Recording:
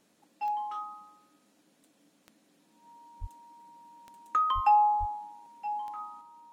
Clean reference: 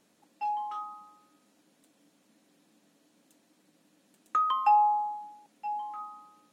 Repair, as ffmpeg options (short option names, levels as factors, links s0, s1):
-filter_complex "[0:a]adeclick=t=4,bandreject=f=940:w=30,asplit=3[s0][s1][s2];[s0]afade=t=out:st=3.2:d=0.02[s3];[s1]highpass=f=140:w=0.5412,highpass=f=140:w=1.3066,afade=t=in:st=3.2:d=0.02,afade=t=out:st=3.32:d=0.02[s4];[s2]afade=t=in:st=3.32:d=0.02[s5];[s3][s4][s5]amix=inputs=3:normalize=0,asplit=3[s6][s7][s8];[s6]afade=t=out:st=4.54:d=0.02[s9];[s7]highpass=f=140:w=0.5412,highpass=f=140:w=1.3066,afade=t=in:st=4.54:d=0.02,afade=t=out:st=4.66:d=0.02[s10];[s8]afade=t=in:st=4.66:d=0.02[s11];[s9][s10][s11]amix=inputs=3:normalize=0,asplit=3[s12][s13][s14];[s12]afade=t=out:st=4.99:d=0.02[s15];[s13]highpass=f=140:w=0.5412,highpass=f=140:w=1.3066,afade=t=in:st=4.99:d=0.02,afade=t=out:st=5.11:d=0.02[s16];[s14]afade=t=in:st=5.11:d=0.02[s17];[s15][s16][s17]amix=inputs=3:normalize=0,asetnsamples=n=441:p=0,asendcmd='6.21 volume volume 4dB',volume=1"